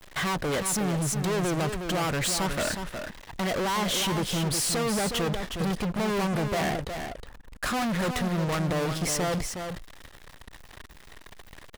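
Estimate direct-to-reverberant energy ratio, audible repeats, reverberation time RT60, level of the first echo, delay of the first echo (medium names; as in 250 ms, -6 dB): no reverb, 1, no reverb, -7.0 dB, 364 ms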